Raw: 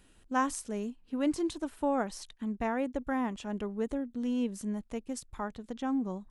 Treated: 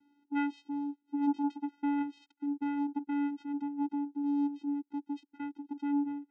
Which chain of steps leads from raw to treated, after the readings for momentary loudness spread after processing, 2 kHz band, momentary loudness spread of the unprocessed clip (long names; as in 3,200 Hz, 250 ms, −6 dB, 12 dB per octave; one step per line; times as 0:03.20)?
9 LU, −5.5 dB, 8 LU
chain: channel vocoder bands 4, square 286 Hz
low-pass filter 3,700 Hz 12 dB per octave